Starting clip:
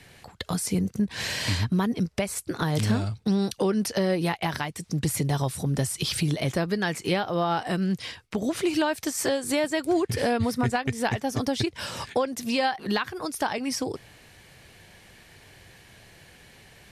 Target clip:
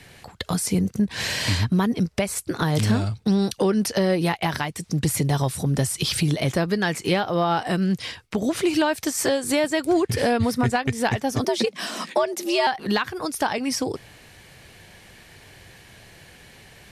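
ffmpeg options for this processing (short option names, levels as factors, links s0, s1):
-filter_complex "[0:a]aeval=exprs='0.282*(cos(1*acos(clip(val(0)/0.282,-1,1)))-cos(1*PI/2))+0.01*(cos(5*acos(clip(val(0)/0.282,-1,1)))-cos(5*PI/2))+0.00316*(cos(7*acos(clip(val(0)/0.282,-1,1)))-cos(7*PI/2))':c=same,asettb=1/sr,asplit=3[s0][s1][s2];[s0]atrim=end=11.444[s3];[s1]atrim=start=11.44:end=12.67,asetpts=PTS-STARTPTS,afade=t=in:d=0.004:c=qsin,afade=t=out:st=1.226:d=0.004:c=qsin,afreqshift=110[s4];[s2]atrim=start=12.666[s5];[s3][s4]acrossfade=d=0.004:c1=hsin:c2=qsin[s6];[s6][s5]acrossfade=d=0.004:c1=qsin:c2=hsin,volume=1.41"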